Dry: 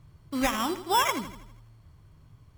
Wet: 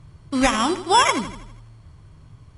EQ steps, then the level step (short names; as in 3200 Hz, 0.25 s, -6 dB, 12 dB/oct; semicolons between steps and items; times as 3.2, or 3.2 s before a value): brick-wall FIR low-pass 11000 Hz; +8.0 dB